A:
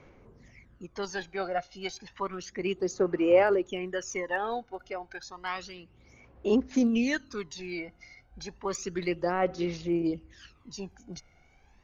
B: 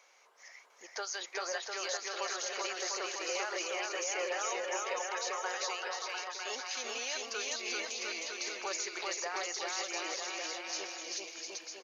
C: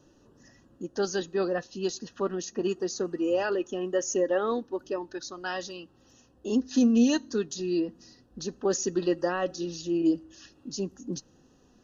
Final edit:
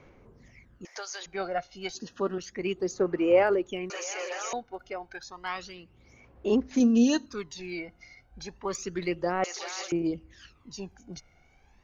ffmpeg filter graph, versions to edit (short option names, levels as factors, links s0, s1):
-filter_complex "[1:a]asplit=3[s0][s1][s2];[2:a]asplit=2[s3][s4];[0:a]asplit=6[s5][s6][s7][s8][s9][s10];[s5]atrim=end=0.852[s11];[s0]atrim=start=0.848:end=1.262[s12];[s6]atrim=start=1.258:end=1.952[s13];[s3]atrim=start=1.948:end=2.382[s14];[s7]atrim=start=2.378:end=3.902[s15];[s1]atrim=start=3.898:end=4.532[s16];[s8]atrim=start=4.528:end=6.802[s17];[s4]atrim=start=6.798:end=7.262[s18];[s9]atrim=start=7.258:end=9.442[s19];[s2]atrim=start=9.438:end=9.922[s20];[s10]atrim=start=9.918[s21];[s11][s12]acrossfade=d=0.004:c1=hsin:c2=hsin[s22];[s22][s13]acrossfade=d=0.004:c1=hsin:c2=hsin[s23];[s23][s14]acrossfade=d=0.004:c1=hsin:c2=hsin[s24];[s24][s15]acrossfade=d=0.004:c1=hsin:c2=hsin[s25];[s25][s16]acrossfade=d=0.004:c1=hsin:c2=hsin[s26];[s26][s17]acrossfade=d=0.004:c1=hsin:c2=hsin[s27];[s27][s18]acrossfade=d=0.004:c1=hsin:c2=hsin[s28];[s28][s19]acrossfade=d=0.004:c1=hsin:c2=hsin[s29];[s29][s20]acrossfade=d=0.004:c1=hsin:c2=hsin[s30];[s30][s21]acrossfade=d=0.004:c1=hsin:c2=hsin"